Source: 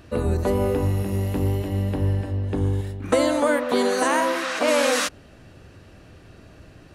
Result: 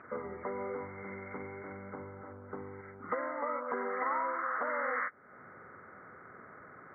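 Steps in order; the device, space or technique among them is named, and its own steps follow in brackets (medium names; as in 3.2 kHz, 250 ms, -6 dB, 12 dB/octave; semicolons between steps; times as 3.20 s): hearing aid with frequency lowering (knee-point frequency compression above 1.2 kHz 4:1; compression 2.5:1, threshold -37 dBFS, peak gain reduction 15.5 dB; cabinet simulation 300–6900 Hz, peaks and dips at 310 Hz -10 dB, 640 Hz -6 dB, 1.1 kHz +6 dB, 1.8 kHz -4 dB, 3 kHz +4 dB)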